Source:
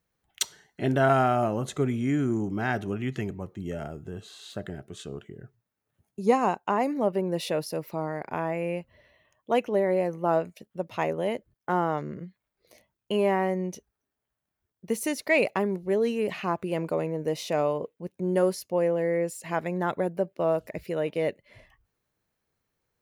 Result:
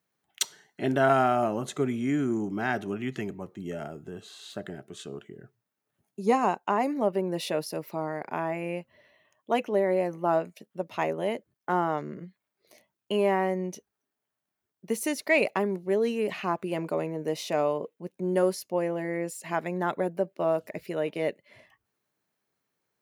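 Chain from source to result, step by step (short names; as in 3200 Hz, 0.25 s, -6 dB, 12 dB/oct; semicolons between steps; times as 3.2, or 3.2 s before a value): HPF 170 Hz 12 dB/oct; notch 500 Hz, Q 12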